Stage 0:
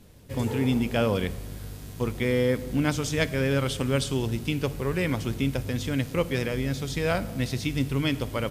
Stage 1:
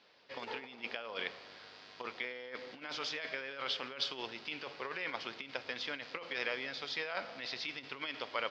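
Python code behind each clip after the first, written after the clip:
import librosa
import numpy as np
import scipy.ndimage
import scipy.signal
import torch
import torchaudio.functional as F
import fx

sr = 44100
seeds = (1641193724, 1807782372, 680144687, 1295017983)

y = scipy.signal.sosfilt(scipy.signal.ellip(4, 1.0, 60, 4900.0, 'lowpass', fs=sr, output='sos'), x)
y = fx.over_compress(y, sr, threshold_db=-28.0, ratio=-0.5)
y = scipy.signal.sosfilt(scipy.signal.butter(2, 780.0, 'highpass', fs=sr, output='sos'), y)
y = y * 10.0 ** (-2.5 / 20.0)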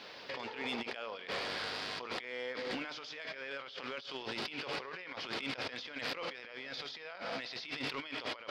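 y = fx.over_compress(x, sr, threshold_db=-51.0, ratio=-1.0)
y = 10.0 ** (-35.5 / 20.0) * np.tanh(y / 10.0 ** (-35.5 / 20.0))
y = y * 10.0 ** (8.5 / 20.0)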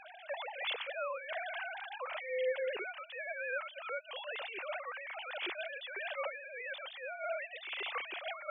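y = fx.sine_speech(x, sr)
y = y * 10.0 ** (1.0 / 20.0)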